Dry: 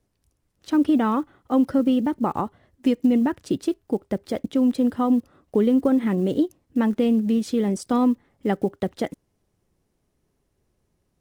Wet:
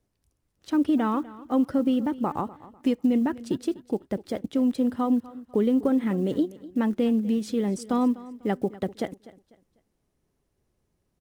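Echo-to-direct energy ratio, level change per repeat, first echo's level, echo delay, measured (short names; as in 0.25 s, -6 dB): -18.0 dB, -10.0 dB, -18.5 dB, 0.248 s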